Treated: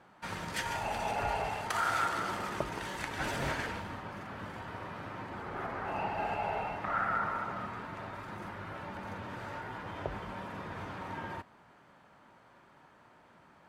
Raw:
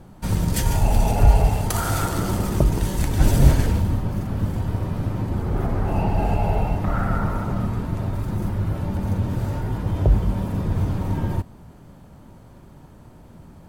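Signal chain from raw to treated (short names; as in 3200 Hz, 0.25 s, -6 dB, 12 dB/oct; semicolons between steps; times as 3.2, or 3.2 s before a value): band-pass 1700 Hz, Q 1.1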